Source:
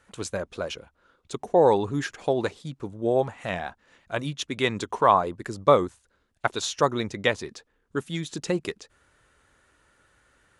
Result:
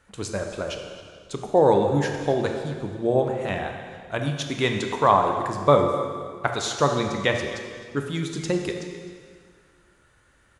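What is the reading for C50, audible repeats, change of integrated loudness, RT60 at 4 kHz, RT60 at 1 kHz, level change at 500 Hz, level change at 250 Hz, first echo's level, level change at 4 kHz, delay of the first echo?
4.5 dB, 1, +2.0 dB, 1.8 s, 1.9 s, +2.0 dB, +3.5 dB, -16.0 dB, +1.5 dB, 260 ms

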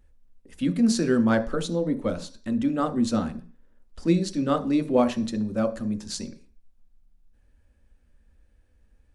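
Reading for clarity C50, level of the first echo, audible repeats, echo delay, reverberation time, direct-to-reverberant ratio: 15.0 dB, no echo, no echo, no echo, 0.40 s, 6.5 dB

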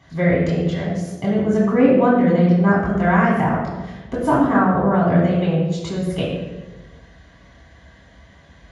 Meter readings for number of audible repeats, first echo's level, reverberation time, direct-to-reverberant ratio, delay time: no echo, no echo, 1.2 s, -6.0 dB, no echo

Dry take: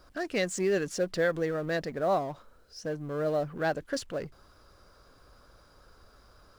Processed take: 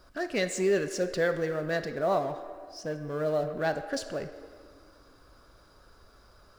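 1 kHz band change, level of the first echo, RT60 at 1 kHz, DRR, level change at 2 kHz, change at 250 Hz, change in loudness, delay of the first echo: 0.0 dB, no echo, 1.9 s, 7.0 dB, +0.5 dB, 0.0 dB, +0.5 dB, no echo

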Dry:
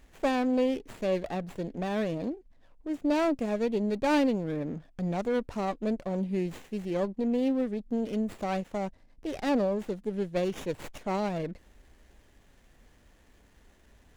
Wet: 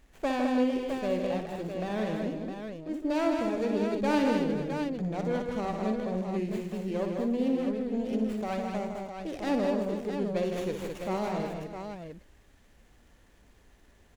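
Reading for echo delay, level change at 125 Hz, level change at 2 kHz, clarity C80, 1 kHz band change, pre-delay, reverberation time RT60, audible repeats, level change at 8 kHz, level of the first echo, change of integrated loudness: 60 ms, 0.0 dB, 0.0 dB, no reverb, 0.0 dB, no reverb, no reverb, 6, no reading, -7.5 dB, 0.0 dB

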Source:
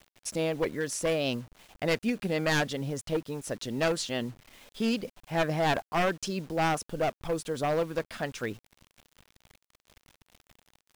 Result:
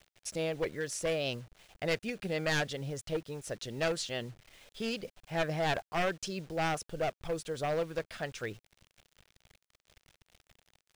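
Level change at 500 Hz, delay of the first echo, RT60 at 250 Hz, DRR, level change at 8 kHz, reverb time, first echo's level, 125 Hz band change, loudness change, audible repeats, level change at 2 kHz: -4.0 dB, no echo, no reverb, no reverb, -4.0 dB, no reverb, no echo, -4.5 dB, -4.5 dB, no echo, -3.5 dB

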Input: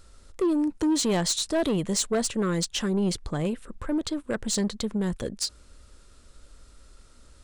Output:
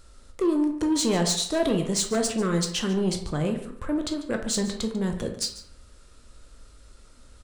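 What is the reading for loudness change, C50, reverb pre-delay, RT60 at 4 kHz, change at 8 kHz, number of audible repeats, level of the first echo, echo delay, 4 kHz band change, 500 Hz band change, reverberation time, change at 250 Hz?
+1.0 dB, 8.0 dB, 13 ms, 0.40 s, +0.5 dB, 1, -15.5 dB, 144 ms, +1.0 dB, +1.5 dB, 0.60 s, +1.0 dB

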